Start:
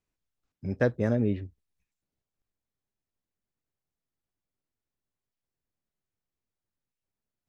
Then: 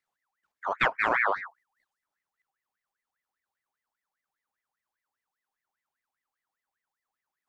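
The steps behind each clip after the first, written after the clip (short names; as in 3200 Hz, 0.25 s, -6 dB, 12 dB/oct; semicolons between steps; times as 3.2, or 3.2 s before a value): in parallel at -1 dB: level quantiser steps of 16 dB; on the sum: ring modulator with a swept carrier 1400 Hz, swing 45%, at 5 Hz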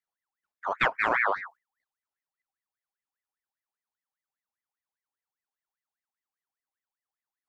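gate -50 dBFS, range -9 dB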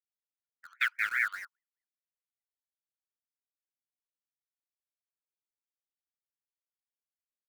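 Chebyshev high-pass 1400 Hz, order 6; in parallel at -7 dB: bit-crush 6-bit; on the sum: three-band expander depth 40%; gain -5.5 dB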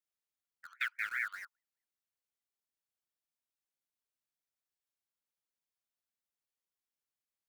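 compressor 1.5:1, threshold -44 dBFS, peak gain reduction 7.5 dB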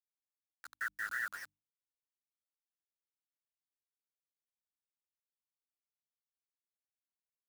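brick-wall FIR low-pass 2000 Hz; requantised 8-bit, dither none; notches 50/100/150/200/250/300 Hz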